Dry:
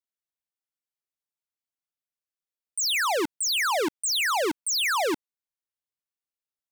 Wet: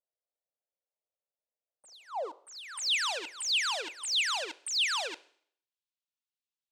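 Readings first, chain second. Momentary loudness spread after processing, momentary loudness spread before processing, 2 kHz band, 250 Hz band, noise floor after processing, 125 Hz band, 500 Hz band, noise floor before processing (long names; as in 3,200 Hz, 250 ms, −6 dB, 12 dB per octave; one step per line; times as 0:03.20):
14 LU, 5 LU, −5.5 dB, −22.0 dB, below −85 dBFS, can't be measured, −12.0 dB, below −85 dBFS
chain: high-shelf EQ 6,300 Hz −6 dB
backwards echo 938 ms −23 dB
soft clipping −24 dBFS, distortion −25 dB
graphic EQ with 10 bands 250 Hz −6 dB, 500 Hz +11 dB, 2,000 Hz −11 dB, 4,000 Hz +7 dB, 8,000 Hz +11 dB
leveller curve on the samples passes 2
downward compressor, threshold −26 dBFS, peak gain reduction 9 dB
band-pass filter sweep 620 Hz → 2,500 Hz, 0:01.99–0:02.92
four-comb reverb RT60 0.6 s, combs from 32 ms, DRR 18.5 dB
level +7 dB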